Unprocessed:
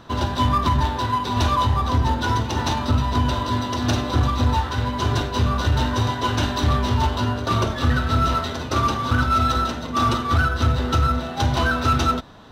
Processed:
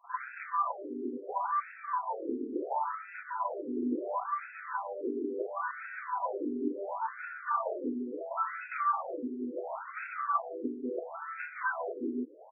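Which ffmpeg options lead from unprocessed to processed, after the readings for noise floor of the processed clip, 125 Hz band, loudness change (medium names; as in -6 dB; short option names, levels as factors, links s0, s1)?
-49 dBFS, under -40 dB, -14.0 dB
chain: -filter_complex "[0:a]acrossover=split=1400[s0][s1];[s0]adelay=40[s2];[s2][s1]amix=inputs=2:normalize=0,acompressor=threshold=0.0794:ratio=3,afftfilt=real='re*between(b*sr/1024,310*pow(1900/310,0.5+0.5*sin(2*PI*0.72*pts/sr))/1.41,310*pow(1900/310,0.5+0.5*sin(2*PI*0.72*pts/sr))*1.41)':imag='im*between(b*sr/1024,310*pow(1900/310,0.5+0.5*sin(2*PI*0.72*pts/sr))/1.41,310*pow(1900/310,0.5+0.5*sin(2*PI*0.72*pts/sr))*1.41)':win_size=1024:overlap=0.75"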